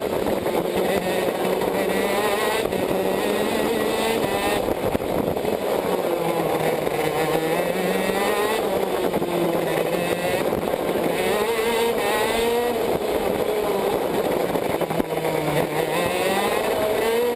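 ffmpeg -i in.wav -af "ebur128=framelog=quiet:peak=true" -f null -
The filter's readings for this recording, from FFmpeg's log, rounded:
Integrated loudness:
  I:         -22.3 LUFS
  Threshold: -32.3 LUFS
Loudness range:
  LRA:         0.9 LU
  Threshold: -42.3 LUFS
  LRA low:   -22.8 LUFS
  LRA high:  -21.9 LUFS
True peak:
  Peak:       -6.9 dBFS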